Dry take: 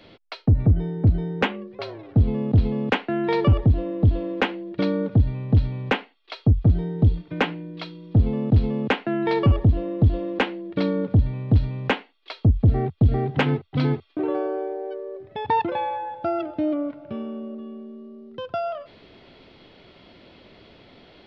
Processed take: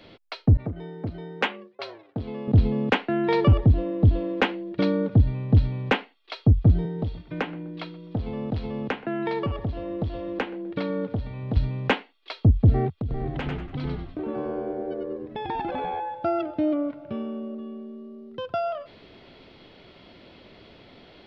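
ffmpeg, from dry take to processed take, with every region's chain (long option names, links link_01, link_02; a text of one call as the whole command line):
ffmpeg -i in.wav -filter_complex "[0:a]asettb=1/sr,asplit=3[link_01][link_02][link_03];[link_01]atrim=end=0.574[link_04];[link_02]atrim=start=0.57:end=2.48,asetpts=PTS-STARTPTS,afade=type=in:duration=0.004:curve=qsin,afade=type=out:start_time=1.906:duration=0.004:curve=qsin,highpass=frequency=660:poles=1,agate=range=-33dB:threshold=-42dB:ratio=3:release=100:detection=peak[link_05];[link_03]atrim=start=2.476[link_06];[link_04][link_05]acrossfade=duration=0.004:curve1=hsin:curve2=qsin[link_07];[link_07][link_06]acrossfade=duration=0.004:curve1=qsin:curve2=hsin,asettb=1/sr,asplit=3[link_08][link_09][link_10];[link_08]atrim=end=6.854[link_11];[link_09]atrim=start=6.85:end=11.57,asetpts=PTS-STARTPTS,afade=type=in:duration=0.004:curve=qsin,afade=type=out:start_time=4.716:duration=0.004:curve=qsin,acrossover=split=540|3100[link_12][link_13][link_14];[link_12]acompressor=threshold=-29dB:ratio=4[link_15];[link_13]acompressor=threshold=-30dB:ratio=4[link_16];[link_14]acompressor=threshold=-50dB:ratio=4[link_17];[link_15][link_16][link_17]amix=inputs=3:normalize=0,asplit=2[link_18][link_19];[link_19]adelay=126,lowpass=frequency=1200:poles=1,volume=-17.5dB,asplit=2[link_20][link_21];[link_21]adelay=126,lowpass=frequency=1200:poles=1,volume=0.4,asplit=2[link_22][link_23];[link_23]adelay=126,lowpass=frequency=1200:poles=1,volume=0.4[link_24];[link_18][link_20][link_22][link_24]amix=inputs=4:normalize=0,atrim=end_sample=208152[link_25];[link_10]atrim=start=11.566[link_26];[link_11][link_25]acrossfade=duration=0.004:curve1=hsin:curve2=qsin[link_27];[link_27][link_26]acrossfade=duration=0.004:curve1=qsin:curve2=hsin,asettb=1/sr,asplit=3[link_28][link_29][link_30];[link_28]atrim=end=12.984[link_31];[link_29]atrim=start=12.98:end=16,asetpts=PTS-STARTPTS,afade=type=in:duration=0.004:curve=qsin,afade=type=out:start_time=3.016:duration=0.004:curve=qsin,acompressor=threshold=-28dB:ratio=5:attack=3.2:release=140:knee=1:detection=peak,asplit=6[link_32][link_33][link_34][link_35][link_36][link_37];[link_33]adelay=96,afreqshift=-82,volume=-3.5dB[link_38];[link_34]adelay=192,afreqshift=-164,volume=-11.7dB[link_39];[link_35]adelay=288,afreqshift=-246,volume=-19.9dB[link_40];[link_36]adelay=384,afreqshift=-328,volume=-28dB[link_41];[link_37]adelay=480,afreqshift=-410,volume=-36.2dB[link_42];[link_32][link_38][link_39][link_40][link_41][link_42]amix=inputs=6:normalize=0,atrim=end_sample=133182[link_43];[link_30]atrim=start=15.996[link_44];[link_31][link_43]acrossfade=duration=0.004:curve1=hsin:curve2=qsin[link_45];[link_45][link_44]acrossfade=duration=0.004:curve1=qsin:curve2=hsin" out.wav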